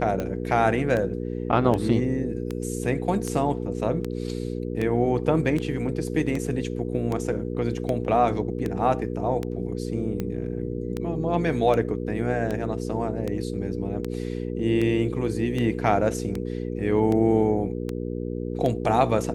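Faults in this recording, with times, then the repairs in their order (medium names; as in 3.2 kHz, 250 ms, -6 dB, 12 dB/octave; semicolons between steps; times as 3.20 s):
hum 60 Hz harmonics 8 -30 dBFS
tick 78 rpm -16 dBFS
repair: de-click; de-hum 60 Hz, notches 8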